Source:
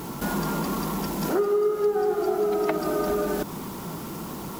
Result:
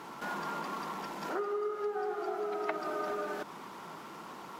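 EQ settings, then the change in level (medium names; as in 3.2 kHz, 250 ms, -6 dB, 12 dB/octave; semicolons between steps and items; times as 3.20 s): band-pass filter 1.5 kHz, Q 0.71; -4.0 dB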